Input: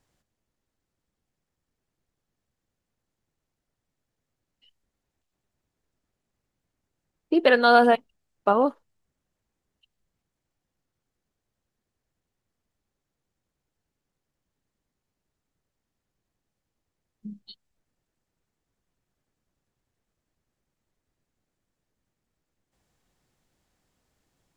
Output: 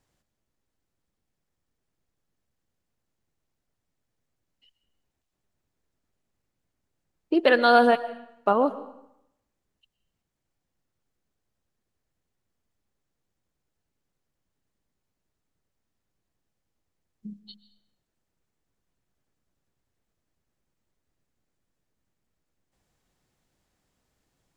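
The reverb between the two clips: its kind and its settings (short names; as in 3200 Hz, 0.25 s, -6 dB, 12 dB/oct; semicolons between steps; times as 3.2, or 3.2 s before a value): digital reverb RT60 0.79 s, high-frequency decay 0.9×, pre-delay 85 ms, DRR 15 dB; gain -1 dB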